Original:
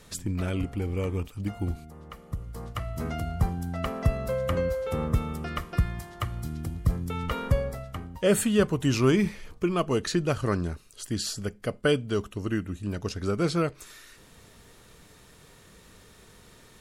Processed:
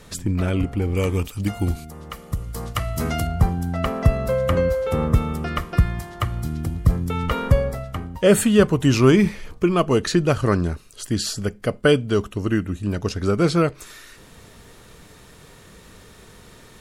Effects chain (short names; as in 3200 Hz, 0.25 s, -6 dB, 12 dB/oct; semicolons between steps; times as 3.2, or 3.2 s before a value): high shelf 2700 Hz -4 dB, from 0.95 s +8 dB, from 3.27 s -2.5 dB; gain +7.5 dB